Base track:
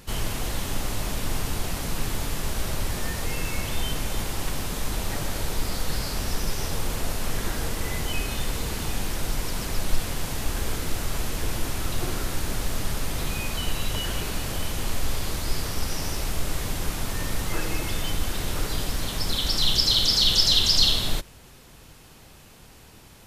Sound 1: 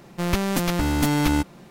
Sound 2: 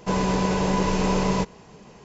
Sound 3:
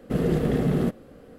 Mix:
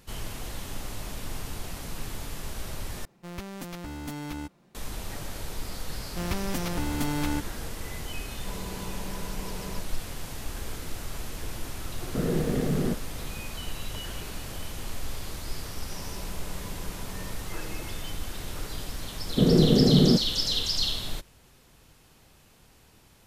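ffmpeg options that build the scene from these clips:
ffmpeg -i bed.wav -i cue0.wav -i cue1.wav -i cue2.wav -filter_complex "[1:a]asplit=2[link_01][link_02];[2:a]asplit=2[link_03][link_04];[3:a]asplit=2[link_05][link_06];[0:a]volume=-8dB[link_07];[link_04]acompressor=threshold=-43dB:ratio=6:attack=3.2:release=140:knee=1:detection=peak[link_08];[link_06]equalizer=frequency=220:width=0.32:gain=11.5[link_09];[link_07]asplit=2[link_10][link_11];[link_10]atrim=end=3.054[link_12];[link_01]atrim=end=1.7,asetpts=PTS-STARTPTS,volume=-15.5dB[link_13];[link_11]atrim=start=4.746[link_14];[link_02]atrim=end=1.7,asetpts=PTS-STARTPTS,volume=-8.5dB,afade=type=in:duration=0.004:curve=hsin,afade=type=out:start_time=1.696:duration=0.004:curve=hsin,adelay=5980[link_15];[link_03]atrim=end=2.04,asetpts=PTS-STARTPTS,volume=-18dB,afade=type=in:duration=0.004:curve=hsin,afade=type=out:start_time=2.036:duration=0.004:curve=hsin,adelay=8380[link_16];[link_05]atrim=end=1.38,asetpts=PTS-STARTPTS,volume=-4dB,afade=type=in:duration=0.004:curve=hsin,afade=type=out:start_time=1.376:duration=0.004:curve=hsin,adelay=12040[link_17];[link_08]atrim=end=2.04,asetpts=PTS-STARTPTS,volume=-2dB,afade=type=in:duration=0.004:curve=hsin,afade=type=out:start_time=2.036:duration=0.004:curve=hsin,adelay=15900[link_18];[link_09]atrim=end=1.38,asetpts=PTS-STARTPTS,volume=-6.5dB,afade=type=in:duration=0.004:curve=hsin,afade=type=out:start_time=1.376:duration=0.004:curve=hsin,adelay=19270[link_19];[link_12][link_13]acrossfade=duration=0.004:curve1=hsin:curve2=hsin[link_20];[link_20][link_14]acrossfade=duration=0.004:curve1=hsin:curve2=hsin[link_21];[link_21][link_15][link_16][link_17][link_18][link_19]amix=inputs=6:normalize=0" out.wav

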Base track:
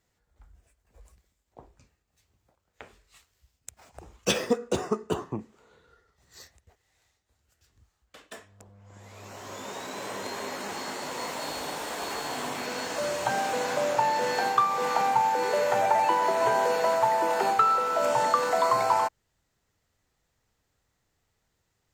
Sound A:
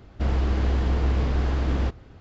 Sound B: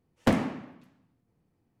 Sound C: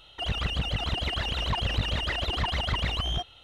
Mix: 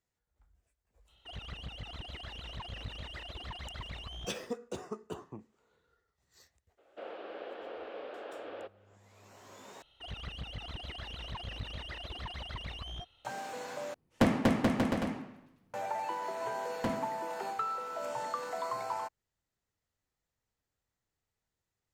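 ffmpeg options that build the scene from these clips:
ffmpeg -i bed.wav -i cue0.wav -i cue1.wav -i cue2.wav -filter_complex "[3:a]asplit=2[link_01][link_02];[2:a]asplit=2[link_03][link_04];[0:a]volume=-13dB[link_05];[1:a]highpass=frequency=420:width=0.5412,highpass=frequency=420:width=1.3066,equalizer=frequency=550:width_type=q:width=4:gain=7,equalizer=frequency=1000:width_type=q:width=4:gain=-7,equalizer=frequency=2000:width_type=q:width=4:gain=-7,lowpass=frequency=3200:width=0.5412,lowpass=frequency=3200:width=1.3066[link_06];[link_02]bandreject=frequency=7200:width=9.6[link_07];[link_03]aecho=1:1:240|432|585.6|708.5|806.8:0.794|0.631|0.501|0.398|0.316[link_08];[link_05]asplit=3[link_09][link_10][link_11];[link_09]atrim=end=9.824[link_12];[link_07]atrim=end=3.43,asetpts=PTS-STARTPTS,volume=-13.5dB[link_13];[link_10]atrim=start=13.246:end=13.944[link_14];[link_08]atrim=end=1.8,asetpts=PTS-STARTPTS,volume=-2.5dB[link_15];[link_11]atrim=start=15.736[link_16];[link_01]atrim=end=3.43,asetpts=PTS-STARTPTS,volume=-15dB,afade=type=in:duration=0.02,afade=type=out:start_time=3.41:duration=0.02,adelay=1070[link_17];[link_06]atrim=end=2.2,asetpts=PTS-STARTPTS,volume=-9dB,afade=type=in:duration=0.02,afade=type=out:start_time=2.18:duration=0.02,adelay=6770[link_18];[link_04]atrim=end=1.8,asetpts=PTS-STARTPTS,volume=-12dB,afade=type=in:duration=0.004:curve=hsin,afade=type=out:start_time=1.796:duration=0.004:curve=hsin,adelay=16570[link_19];[link_12][link_13]acrossfade=duration=0.004:curve1=hsin:curve2=hsin[link_20];[link_20][link_14]acrossfade=duration=0.004:curve1=hsin:curve2=hsin[link_21];[link_21][link_15]acrossfade=duration=0.004:curve1=hsin:curve2=hsin[link_22];[link_22][link_16]acrossfade=duration=0.004:curve1=hsin:curve2=hsin[link_23];[link_23][link_17][link_18][link_19]amix=inputs=4:normalize=0" out.wav

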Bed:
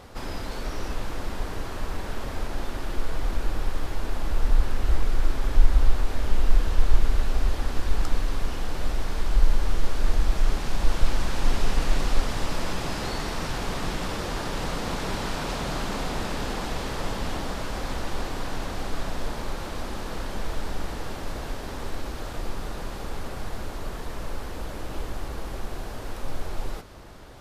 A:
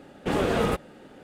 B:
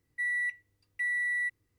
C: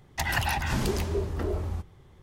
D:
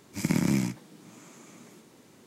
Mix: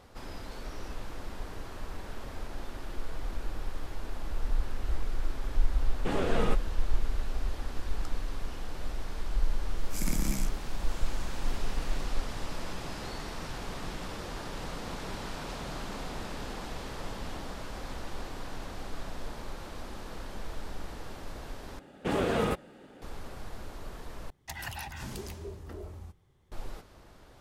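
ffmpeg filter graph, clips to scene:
ffmpeg -i bed.wav -i cue0.wav -i cue1.wav -i cue2.wav -i cue3.wav -filter_complex "[1:a]asplit=2[link_01][link_02];[0:a]volume=-9dB[link_03];[link_01]lowpass=9600[link_04];[4:a]crystalizer=i=3:c=0[link_05];[3:a]highshelf=frequency=4700:gain=6[link_06];[link_03]asplit=3[link_07][link_08][link_09];[link_07]atrim=end=21.794[link_10];[link_02]atrim=end=1.23,asetpts=PTS-STARTPTS,volume=-4dB[link_11];[link_08]atrim=start=23.016:end=24.304[link_12];[link_06]atrim=end=2.22,asetpts=PTS-STARTPTS,volume=-13dB[link_13];[link_09]atrim=start=26.516[link_14];[link_04]atrim=end=1.23,asetpts=PTS-STARTPTS,volume=-6dB,afade=type=in:duration=0.004:curve=hsin,afade=type=out:start_time=1.226:duration=0.004:curve=hsin,adelay=5790[link_15];[link_05]atrim=end=2.26,asetpts=PTS-STARTPTS,volume=-11dB,afade=type=in:duration=0.004:curve=hsin,afade=type=out:start_time=2.256:duration=0.004:curve=hsin,adelay=9770[link_16];[link_10][link_11]acrossfade=duration=0.004:curve1=hsin:curve2=hsin[link_17];[link_17][link_12]acrossfade=duration=0.004:curve1=hsin:curve2=hsin[link_18];[link_18][link_13]acrossfade=duration=0.004:curve1=hsin:curve2=hsin[link_19];[link_19][link_14]acrossfade=duration=0.004:curve1=hsin:curve2=hsin[link_20];[link_20][link_15][link_16]amix=inputs=3:normalize=0" out.wav

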